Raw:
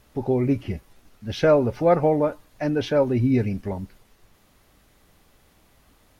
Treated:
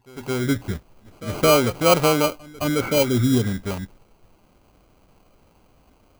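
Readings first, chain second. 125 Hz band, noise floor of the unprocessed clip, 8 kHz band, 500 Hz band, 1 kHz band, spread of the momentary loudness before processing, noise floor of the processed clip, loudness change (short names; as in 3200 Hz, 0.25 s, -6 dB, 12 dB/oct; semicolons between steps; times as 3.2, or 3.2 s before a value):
+1.0 dB, -60 dBFS, n/a, 0.0 dB, +4.0 dB, 16 LU, -58 dBFS, +1.5 dB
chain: opening faded in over 0.60 s; sample-rate reducer 1800 Hz, jitter 0%; pre-echo 0.217 s -20.5 dB; spectral repair 2.84–3.49, 1100–2300 Hz both; gain +1.5 dB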